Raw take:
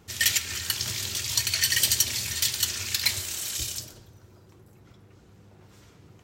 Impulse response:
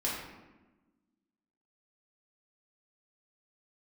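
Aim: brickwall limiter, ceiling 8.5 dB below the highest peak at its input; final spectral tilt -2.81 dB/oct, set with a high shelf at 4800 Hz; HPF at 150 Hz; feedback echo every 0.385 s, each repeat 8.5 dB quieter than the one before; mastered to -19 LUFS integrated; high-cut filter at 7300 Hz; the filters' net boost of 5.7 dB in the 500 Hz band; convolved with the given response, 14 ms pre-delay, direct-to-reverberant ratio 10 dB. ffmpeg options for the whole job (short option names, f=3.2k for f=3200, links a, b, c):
-filter_complex "[0:a]highpass=150,lowpass=7.3k,equalizer=f=500:t=o:g=8,highshelf=f=4.8k:g=-8,alimiter=limit=-21dB:level=0:latency=1,aecho=1:1:385|770|1155|1540:0.376|0.143|0.0543|0.0206,asplit=2[a][b];[1:a]atrim=start_sample=2205,adelay=14[c];[b][c]afir=irnorm=-1:irlink=0,volume=-16dB[d];[a][d]amix=inputs=2:normalize=0,volume=13dB"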